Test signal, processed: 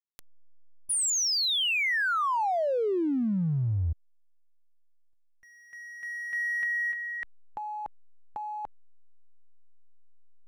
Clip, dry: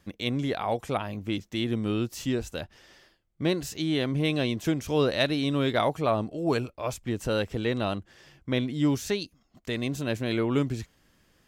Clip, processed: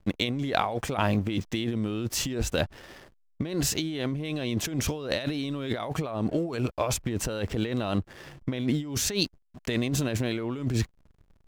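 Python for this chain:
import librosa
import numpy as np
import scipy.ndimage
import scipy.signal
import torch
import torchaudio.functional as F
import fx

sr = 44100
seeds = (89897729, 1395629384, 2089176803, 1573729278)

y = fx.backlash(x, sr, play_db=-50.0)
y = fx.over_compress(y, sr, threshold_db=-34.0, ratio=-1.0)
y = y * librosa.db_to_amplitude(5.0)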